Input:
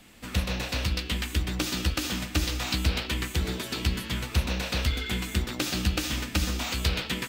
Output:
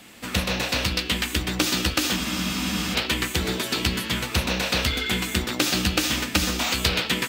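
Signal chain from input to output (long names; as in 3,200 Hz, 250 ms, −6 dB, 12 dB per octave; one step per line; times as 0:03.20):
high-pass filter 190 Hz 6 dB per octave
frozen spectrum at 0:02.18, 0.75 s
level +7.5 dB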